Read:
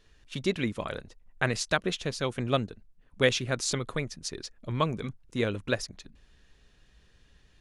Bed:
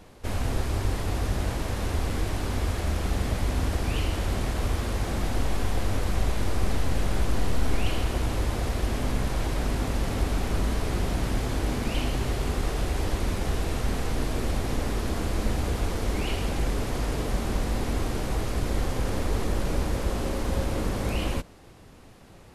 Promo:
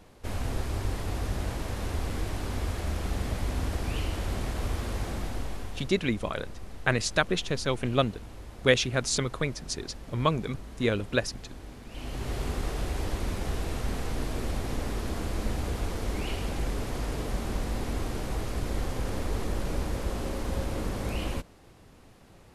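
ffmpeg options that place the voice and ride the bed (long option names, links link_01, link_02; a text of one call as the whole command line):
ffmpeg -i stem1.wav -i stem2.wav -filter_complex "[0:a]adelay=5450,volume=2dB[link_01];[1:a]volume=9.5dB,afade=type=out:start_time=5:duration=0.94:silence=0.211349,afade=type=in:start_time=11.89:duration=0.49:silence=0.211349[link_02];[link_01][link_02]amix=inputs=2:normalize=0" out.wav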